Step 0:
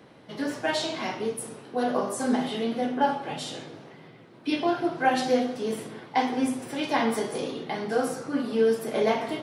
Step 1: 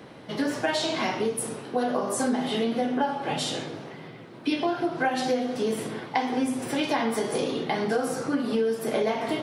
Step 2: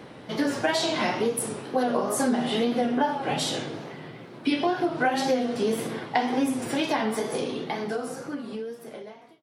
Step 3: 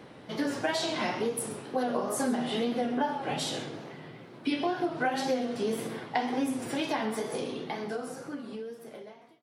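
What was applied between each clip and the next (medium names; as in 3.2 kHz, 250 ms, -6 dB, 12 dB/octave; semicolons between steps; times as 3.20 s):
compression 6:1, threshold -29 dBFS, peak gain reduction 12 dB; trim +6.5 dB
fade out at the end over 2.97 s; wow and flutter 76 cents; trim +1.5 dB
delay 132 ms -17 dB; trim -5 dB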